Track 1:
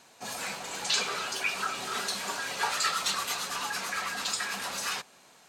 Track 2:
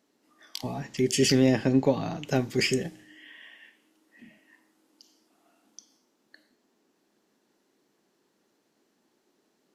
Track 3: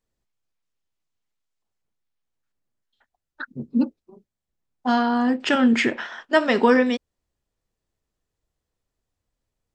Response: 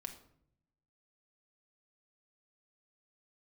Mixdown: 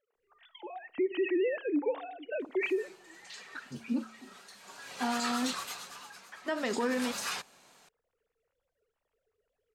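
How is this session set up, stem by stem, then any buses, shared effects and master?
−3.0 dB, 2.40 s, no send, pitch vibrato 3.4 Hz 34 cents; automatic ducking −18 dB, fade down 0.90 s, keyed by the second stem
−4.5 dB, 0.00 s, send −12 dB, three sine waves on the formant tracks
−10.0 dB, 0.15 s, muted 0:05.53–0:06.32, no send, hum removal 56.01 Hz, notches 4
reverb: on, RT60 0.65 s, pre-delay 4 ms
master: brickwall limiter −22.5 dBFS, peak gain reduction 9 dB

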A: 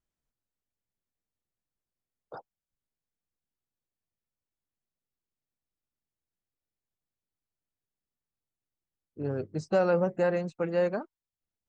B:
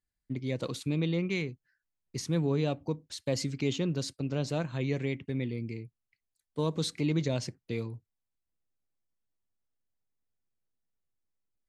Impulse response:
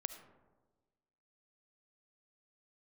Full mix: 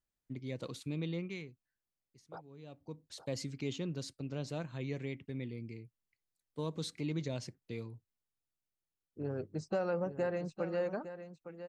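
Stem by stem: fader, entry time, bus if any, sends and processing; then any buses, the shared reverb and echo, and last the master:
−4.5 dB, 0.00 s, no send, echo send −11.5 dB, downward compressor 2 to 1, threshold −29 dBFS, peak gain reduction 5.5 dB
−8.0 dB, 0.00 s, no send, no echo send, automatic ducking −22 dB, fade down 1.15 s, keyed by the first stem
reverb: not used
echo: single-tap delay 859 ms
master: no processing

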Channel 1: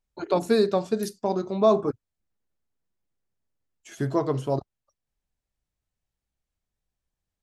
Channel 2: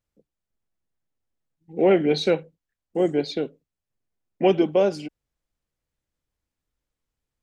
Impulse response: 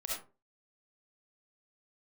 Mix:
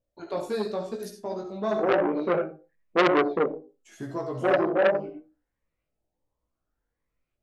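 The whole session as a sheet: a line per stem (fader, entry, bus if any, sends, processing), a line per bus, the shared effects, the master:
−7.5 dB, 0.00 s, send −3 dB, no processing
+0.5 dB, 0.00 s, send −7 dB, parametric band 570 Hz +5 dB 2 octaves; auto-filter low-pass saw up 0.68 Hz 600–2,500 Hz; phaser whose notches keep moving one way rising 1.4 Hz; automatic ducking −21 dB, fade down 0.35 s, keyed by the first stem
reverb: on, RT60 0.35 s, pre-delay 25 ms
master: chorus effect 0.93 Hz, delay 16.5 ms, depth 2.8 ms; saturating transformer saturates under 1,800 Hz

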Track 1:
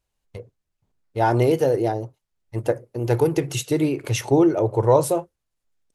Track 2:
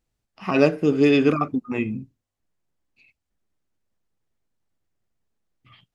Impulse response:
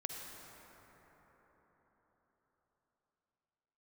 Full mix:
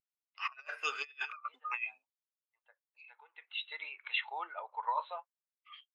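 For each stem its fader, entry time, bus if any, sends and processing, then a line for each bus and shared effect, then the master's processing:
−8.5 dB, 0.00 s, no send, Chebyshev low-pass filter 4,000 Hz, order 8; automatic ducking −16 dB, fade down 0.45 s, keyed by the second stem
−0.5 dB, 0.00 s, no send, parametric band 1,900 Hz −2 dB 0.38 octaves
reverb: not used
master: high-pass filter 1,100 Hz 24 dB per octave; compressor whose output falls as the input rises −39 dBFS, ratio −0.5; every bin expanded away from the loudest bin 1.5 to 1

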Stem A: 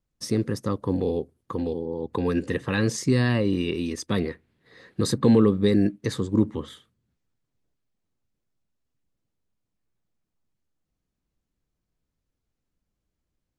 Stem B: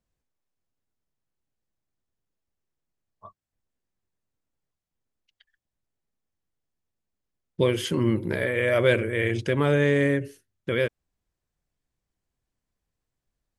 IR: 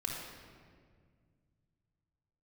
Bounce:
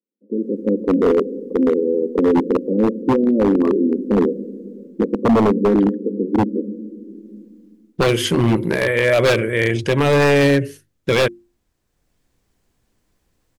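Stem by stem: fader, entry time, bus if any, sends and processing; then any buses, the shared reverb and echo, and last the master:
−3.5 dB, 0.00 s, send −11 dB, Chebyshev band-pass filter 200–540 Hz, order 4
+1.0 dB, 0.40 s, no send, mains-hum notches 50/100/150/200/250/300/350 Hz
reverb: on, RT60 1.9 s, pre-delay 3 ms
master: automatic gain control gain up to 15.5 dB; wave folding −8.5 dBFS

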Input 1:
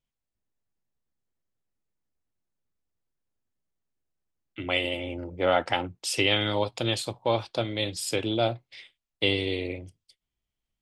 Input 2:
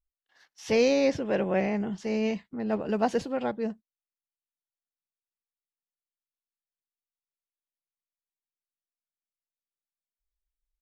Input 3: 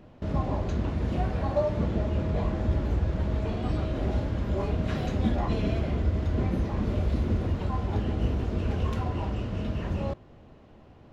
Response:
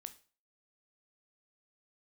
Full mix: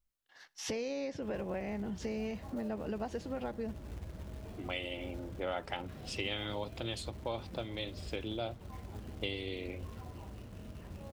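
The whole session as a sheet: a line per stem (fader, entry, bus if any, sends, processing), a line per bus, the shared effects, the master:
−6.0 dB, 0.00 s, no send, low-pass that shuts in the quiet parts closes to 390 Hz, open at −23.5 dBFS
+1.5 dB, 0.00 s, send −4.5 dB, downward compressor 5 to 1, threshold −34 dBFS, peak gain reduction 14 dB
−17.0 dB, 1.00 s, no send, floating-point word with a short mantissa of 2 bits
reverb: on, RT60 0.40 s, pre-delay 13 ms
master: downward compressor 2 to 1, threshold −39 dBFS, peak gain reduction 9 dB

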